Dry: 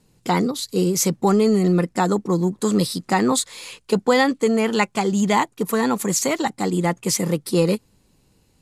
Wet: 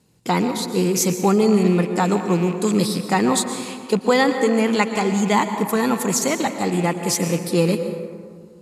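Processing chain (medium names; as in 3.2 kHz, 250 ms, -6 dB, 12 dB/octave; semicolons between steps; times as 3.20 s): rattle on loud lows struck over -33 dBFS, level -27 dBFS; high-pass 66 Hz; plate-style reverb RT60 2 s, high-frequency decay 0.4×, pre-delay 105 ms, DRR 7.5 dB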